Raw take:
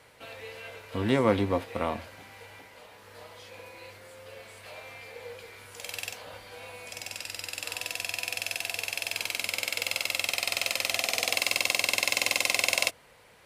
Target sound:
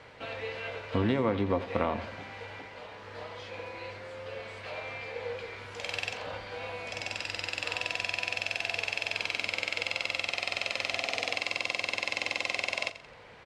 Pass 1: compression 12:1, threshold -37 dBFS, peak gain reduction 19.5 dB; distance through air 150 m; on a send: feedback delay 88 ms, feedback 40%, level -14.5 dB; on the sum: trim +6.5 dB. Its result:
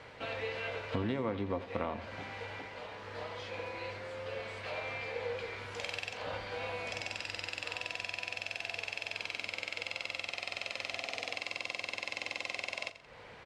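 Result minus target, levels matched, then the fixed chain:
compression: peak gain reduction +7 dB
compression 12:1, threshold -29.5 dBFS, peak gain reduction 12.5 dB; distance through air 150 m; on a send: feedback delay 88 ms, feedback 40%, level -14.5 dB; on the sum: trim +6.5 dB

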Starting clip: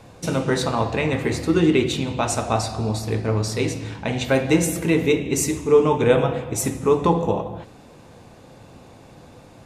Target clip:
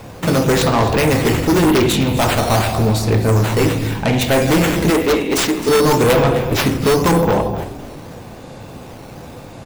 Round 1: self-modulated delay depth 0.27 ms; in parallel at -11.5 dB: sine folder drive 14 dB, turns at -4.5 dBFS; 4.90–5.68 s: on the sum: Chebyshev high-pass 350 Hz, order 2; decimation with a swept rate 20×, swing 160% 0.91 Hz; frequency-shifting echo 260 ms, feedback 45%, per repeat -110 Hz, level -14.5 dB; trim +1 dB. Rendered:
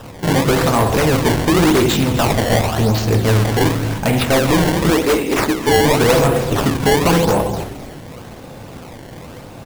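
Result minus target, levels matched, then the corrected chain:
decimation with a swept rate: distortion +8 dB
self-modulated delay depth 0.27 ms; in parallel at -11.5 dB: sine folder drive 14 dB, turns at -4.5 dBFS; 4.90–5.68 s: on the sum: Chebyshev high-pass 350 Hz, order 2; decimation with a swept rate 5×, swing 160% 0.91 Hz; frequency-shifting echo 260 ms, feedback 45%, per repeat -110 Hz, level -14.5 dB; trim +1 dB

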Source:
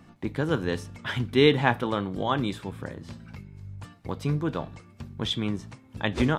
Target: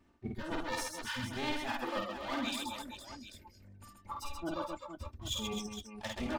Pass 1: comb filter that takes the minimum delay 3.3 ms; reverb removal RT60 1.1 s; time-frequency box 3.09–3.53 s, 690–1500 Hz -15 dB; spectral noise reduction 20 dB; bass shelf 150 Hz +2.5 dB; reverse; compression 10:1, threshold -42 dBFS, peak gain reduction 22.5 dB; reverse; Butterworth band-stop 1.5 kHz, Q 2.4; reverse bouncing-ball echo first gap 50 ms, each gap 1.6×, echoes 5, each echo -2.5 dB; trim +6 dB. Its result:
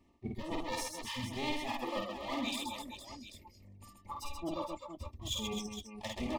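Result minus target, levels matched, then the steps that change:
2 kHz band -3.0 dB
remove: Butterworth band-stop 1.5 kHz, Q 2.4

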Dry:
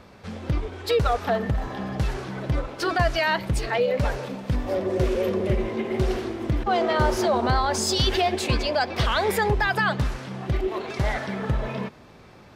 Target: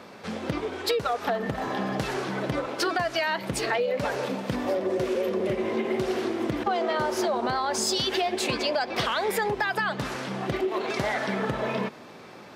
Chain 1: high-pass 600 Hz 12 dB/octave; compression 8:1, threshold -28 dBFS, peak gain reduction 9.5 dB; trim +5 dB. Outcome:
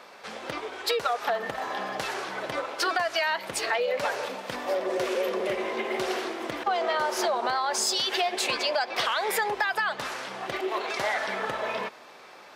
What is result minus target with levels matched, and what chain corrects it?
250 Hz band -8.0 dB
high-pass 210 Hz 12 dB/octave; compression 8:1, threshold -28 dBFS, peak gain reduction 10.5 dB; trim +5 dB

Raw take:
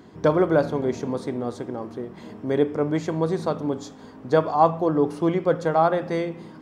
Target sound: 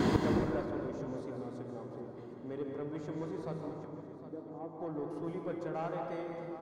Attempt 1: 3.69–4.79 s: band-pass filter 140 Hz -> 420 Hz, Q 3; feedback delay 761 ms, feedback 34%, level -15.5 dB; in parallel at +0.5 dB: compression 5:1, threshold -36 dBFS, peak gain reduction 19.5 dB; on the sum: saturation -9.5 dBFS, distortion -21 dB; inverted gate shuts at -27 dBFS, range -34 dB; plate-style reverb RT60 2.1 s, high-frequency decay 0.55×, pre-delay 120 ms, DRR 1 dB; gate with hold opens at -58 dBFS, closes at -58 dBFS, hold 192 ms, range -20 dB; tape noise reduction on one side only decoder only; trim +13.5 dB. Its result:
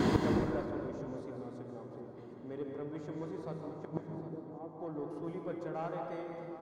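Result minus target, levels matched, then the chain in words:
compression: peak gain reduction +8 dB
3.69–4.79 s: band-pass filter 140 Hz -> 420 Hz, Q 3; feedback delay 761 ms, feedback 34%, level -15.5 dB; in parallel at +0.5 dB: compression 5:1, threshold -26 dBFS, peak gain reduction 11.5 dB; on the sum: saturation -9.5 dBFS, distortion -19 dB; inverted gate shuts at -27 dBFS, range -34 dB; plate-style reverb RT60 2.1 s, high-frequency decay 0.55×, pre-delay 120 ms, DRR 1 dB; gate with hold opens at -58 dBFS, closes at -58 dBFS, hold 192 ms, range -20 dB; tape noise reduction on one side only decoder only; trim +13.5 dB

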